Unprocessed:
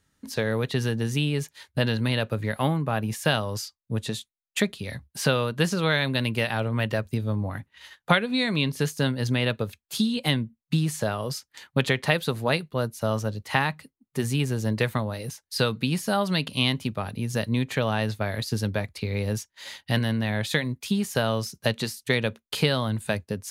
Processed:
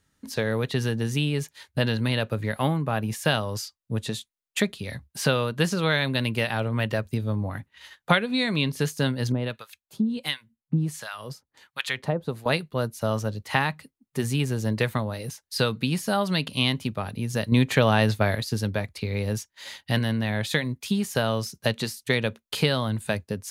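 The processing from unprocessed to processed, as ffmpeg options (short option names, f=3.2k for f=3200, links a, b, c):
-filter_complex "[0:a]asettb=1/sr,asplit=3[a][b][c];[a]atrim=end=9.324[d];[b]atrim=start=9.32:end=12.46,asetpts=PTS-STARTPTS,afade=t=in:d=0.004:c=qsin,afade=t=out:st=3.136:d=0.004:c=qsin,acrossover=split=1000[e][f];[e]aeval=exprs='val(0)*(1-1/2+1/2*cos(2*PI*1.4*n/s))':c=same[g];[f]aeval=exprs='val(0)*(1-1/2-1/2*cos(2*PI*1.4*n/s))':c=same[h];[g][h]amix=inputs=2:normalize=0[i];[c]atrim=start=12.456[j];[d][i]acrossfade=d=0.004:c1=hsin:c2=qsin[k];[k][j]acrossfade=d=0.004:c1=qsin:c2=hsin,asplit=3[l][m][n];[l]atrim=end=17.522[o];[m]atrim=start=17.518:end=18.352,asetpts=PTS-STARTPTS,volume=5.5dB[p];[n]atrim=start=18.348[q];[o][p]acrossfade=d=0.004:c1=hsin:c2=hsin[r];[r][q]acrossfade=d=0.004:c1=hsin:c2=hsin"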